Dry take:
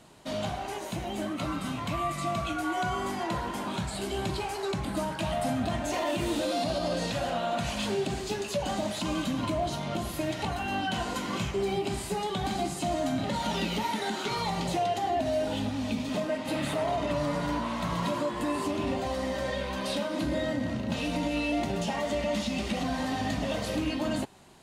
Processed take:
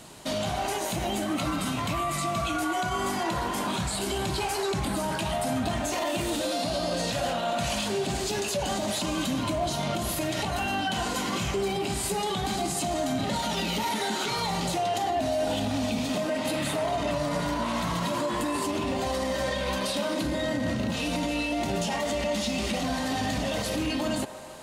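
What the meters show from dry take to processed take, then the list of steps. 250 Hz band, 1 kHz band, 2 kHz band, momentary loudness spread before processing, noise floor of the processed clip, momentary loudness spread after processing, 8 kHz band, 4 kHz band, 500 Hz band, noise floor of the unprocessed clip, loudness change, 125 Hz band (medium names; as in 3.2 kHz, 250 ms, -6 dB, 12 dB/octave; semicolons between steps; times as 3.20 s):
+1.5 dB, +2.5 dB, +3.0 dB, 4 LU, -31 dBFS, 1 LU, +7.5 dB, +4.5 dB, +1.5 dB, -37 dBFS, +2.5 dB, +1.5 dB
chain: treble shelf 4.2 kHz +7.5 dB; peak limiter -27 dBFS, peak gain reduction 9.5 dB; feedback echo behind a band-pass 153 ms, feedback 78%, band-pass 870 Hz, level -13 dB; trim +6.5 dB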